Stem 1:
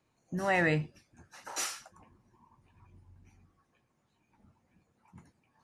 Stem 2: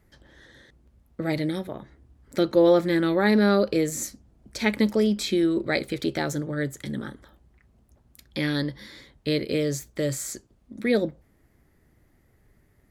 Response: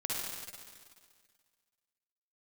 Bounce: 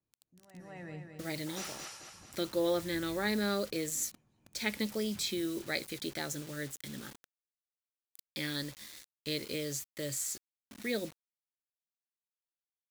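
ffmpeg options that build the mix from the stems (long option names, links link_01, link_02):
-filter_complex "[0:a]acrossover=split=5300[link_01][link_02];[link_02]acompressor=threshold=-45dB:ratio=4:attack=1:release=60[link_03];[link_01][link_03]amix=inputs=2:normalize=0,tiltshelf=frequency=680:gain=8,dynaudnorm=framelen=530:gausssize=5:maxgain=8dB,volume=-10dB,afade=type=in:start_time=1.41:duration=0.34:silence=0.316228,asplit=2[link_04][link_05];[link_05]volume=-3dB[link_06];[1:a]acrusher=bits=6:mix=0:aa=0.000001,volume=-13.5dB,asplit=2[link_07][link_08];[link_08]apad=whole_len=248599[link_09];[link_04][link_09]sidechaingate=range=-15dB:threshold=-58dB:ratio=16:detection=peak[link_10];[link_06]aecho=0:1:217|434|651|868|1085|1302|1519:1|0.48|0.23|0.111|0.0531|0.0255|0.0122[link_11];[link_10][link_07][link_11]amix=inputs=3:normalize=0,highshelf=frequency=2200:gain=11.5"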